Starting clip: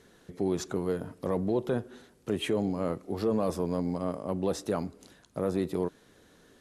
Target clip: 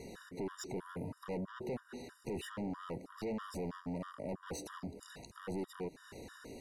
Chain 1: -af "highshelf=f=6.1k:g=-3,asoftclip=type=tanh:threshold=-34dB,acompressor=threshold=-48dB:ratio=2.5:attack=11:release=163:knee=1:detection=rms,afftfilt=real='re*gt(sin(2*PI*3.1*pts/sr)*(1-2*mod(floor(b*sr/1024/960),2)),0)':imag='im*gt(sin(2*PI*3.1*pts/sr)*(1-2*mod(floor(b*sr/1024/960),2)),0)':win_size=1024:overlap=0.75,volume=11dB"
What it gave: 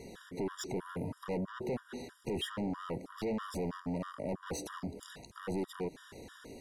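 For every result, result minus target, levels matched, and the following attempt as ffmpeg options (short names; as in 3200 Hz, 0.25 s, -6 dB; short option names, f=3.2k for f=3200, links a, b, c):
compressor: peak gain reduction -4 dB; 4000 Hz band +3.5 dB
-af "highshelf=f=6.1k:g=-3,asoftclip=type=tanh:threshold=-34dB,acompressor=threshold=-54.5dB:ratio=2.5:attack=11:release=163:knee=1:detection=rms,afftfilt=real='re*gt(sin(2*PI*3.1*pts/sr)*(1-2*mod(floor(b*sr/1024/960),2)),0)':imag='im*gt(sin(2*PI*3.1*pts/sr)*(1-2*mod(floor(b*sr/1024/960),2)),0)':win_size=1024:overlap=0.75,volume=11dB"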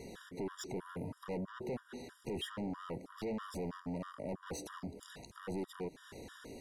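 4000 Hz band +4.0 dB
-af "asuperstop=centerf=3300:order=20:qfactor=6.1,highshelf=f=6.1k:g=-3,asoftclip=type=tanh:threshold=-34dB,acompressor=threshold=-54.5dB:ratio=2.5:attack=11:release=163:knee=1:detection=rms,afftfilt=real='re*gt(sin(2*PI*3.1*pts/sr)*(1-2*mod(floor(b*sr/1024/960),2)),0)':imag='im*gt(sin(2*PI*3.1*pts/sr)*(1-2*mod(floor(b*sr/1024/960),2)),0)':win_size=1024:overlap=0.75,volume=11dB"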